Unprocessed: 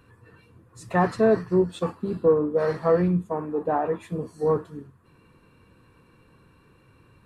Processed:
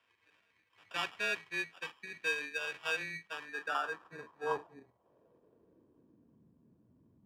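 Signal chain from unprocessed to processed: sample-and-hold 21×; band-pass sweep 2300 Hz -> 230 Hz, 3.21–6.43; frequency shift -13 Hz; gain -2.5 dB

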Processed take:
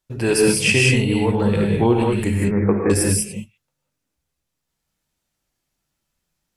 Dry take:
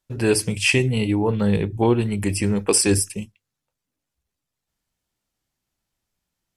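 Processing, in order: 2.3–2.9 steep low-pass 2200 Hz 96 dB/oct; non-linear reverb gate 0.22 s rising, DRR -1.5 dB

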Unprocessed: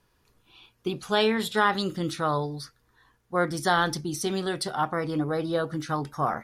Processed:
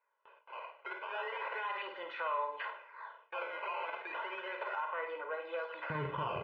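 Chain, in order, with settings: soft clip -21.5 dBFS, distortion -11 dB; Schroeder reverb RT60 0.45 s, combs from 31 ms, DRR 9.5 dB; vocal rider 0.5 s; decimation with a swept rate 14×, swing 160% 0.34 Hz; comb 2 ms, depth 99%; compressor 6:1, threshold -38 dBFS, peak gain reduction 16.5 dB; HPF 650 Hz 24 dB/oct, from 5.9 s 79 Hz; limiter -35.5 dBFS, peak gain reduction 9 dB; flutter echo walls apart 8.8 m, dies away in 0.36 s; gate with hold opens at -53 dBFS; Chebyshev low-pass 2700 Hz, order 4; gain +9 dB

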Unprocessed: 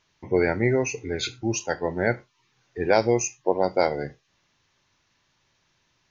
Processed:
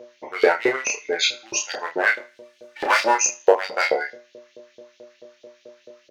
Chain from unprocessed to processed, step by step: 2.13–3.15 minimum comb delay 3.4 ms; in parallel at -5 dB: wavefolder -17 dBFS; on the sum: buzz 120 Hz, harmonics 5, -43 dBFS -3 dB/oct; LFO high-pass saw up 4.6 Hz 440–4100 Hz; doubler 30 ms -5 dB; on a send: thinning echo 78 ms, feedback 33%, high-pass 710 Hz, level -21 dB; on the sum: gain +1.5 dB

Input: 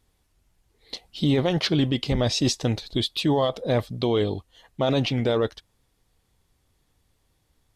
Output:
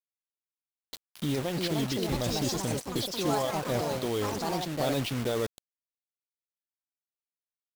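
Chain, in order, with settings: bit-crush 5-bit; echoes that change speed 0.605 s, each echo +4 st, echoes 3; vocal rider 2 s; gain -8.5 dB

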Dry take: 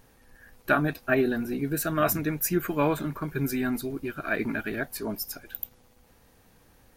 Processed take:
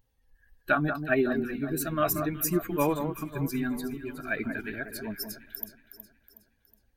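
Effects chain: per-bin expansion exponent 1.5; echo with dull and thin repeats by turns 0.184 s, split 1600 Hz, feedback 65%, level -7.5 dB

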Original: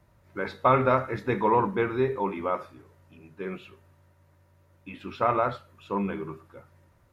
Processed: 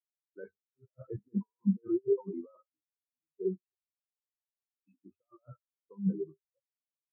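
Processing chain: negative-ratio compressor -30 dBFS, ratio -0.5; spectral expander 4:1; gain -3 dB

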